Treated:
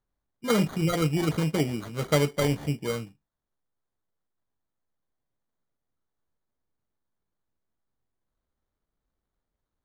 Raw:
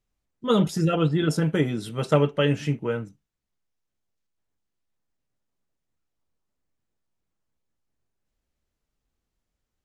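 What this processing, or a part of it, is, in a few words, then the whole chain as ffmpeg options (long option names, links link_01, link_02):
crushed at another speed: -af "asetrate=35280,aresample=44100,acrusher=samples=21:mix=1:aa=0.000001,asetrate=55125,aresample=44100,volume=-3dB"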